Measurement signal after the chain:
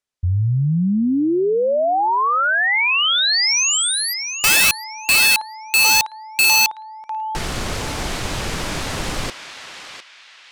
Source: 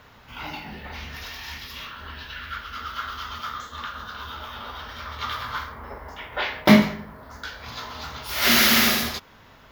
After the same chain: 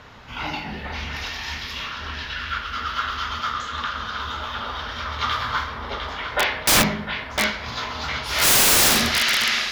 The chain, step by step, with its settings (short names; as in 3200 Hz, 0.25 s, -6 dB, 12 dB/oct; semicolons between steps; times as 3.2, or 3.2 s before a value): LPF 8200 Hz 12 dB/oct; narrowing echo 0.704 s, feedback 43%, band-pass 2700 Hz, level -6 dB; wrapped overs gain 16.5 dB; gain +6 dB